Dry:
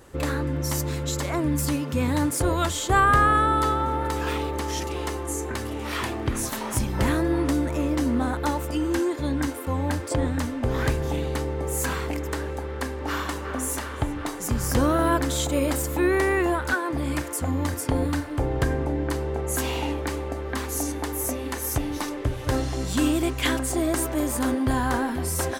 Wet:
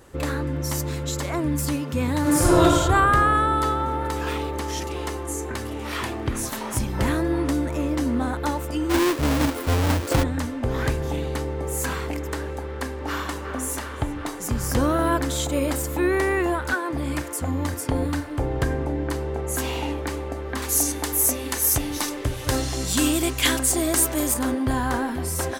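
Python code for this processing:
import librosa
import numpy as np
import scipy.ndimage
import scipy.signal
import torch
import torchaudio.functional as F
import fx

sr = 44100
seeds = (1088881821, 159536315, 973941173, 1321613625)

y = fx.reverb_throw(x, sr, start_s=2.2, length_s=0.43, rt60_s=1.9, drr_db=-7.5)
y = fx.halfwave_hold(y, sr, at=(8.89, 10.22), fade=0.02)
y = fx.high_shelf(y, sr, hz=2900.0, db=10.5, at=(20.62, 24.34))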